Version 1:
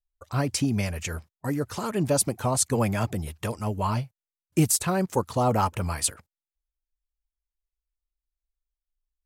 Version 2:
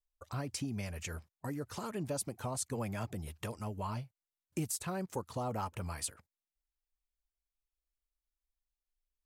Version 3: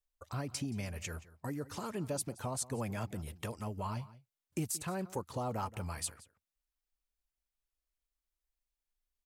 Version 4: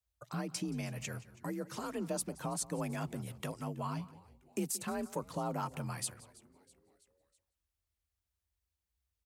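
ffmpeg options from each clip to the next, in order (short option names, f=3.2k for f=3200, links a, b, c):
-af "acompressor=threshold=-36dB:ratio=2,volume=-5dB"
-filter_complex "[0:a]asplit=2[a][b];[b]adelay=174.9,volume=-18dB,highshelf=f=4k:g=-3.94[c];[a][c]amix=inputs=2:normalize=0"
-filter_complex "[0:a]asplit=5[a][b][c][d][e];[b]adelay=326,afreqshift=-150,volume=-22.5dB[f];[c]adelay=652,afreqshift=-300,volume=-27.5dB[g];[d]adelay=978,afreqshift=-450,volume=-32.6dB[h];[e]adelay=1304,afreqshift=-600,volume=-37.6dB[i];[a][f][g][h][i]amix=inputs=5:normalize=0,afreqshift=42"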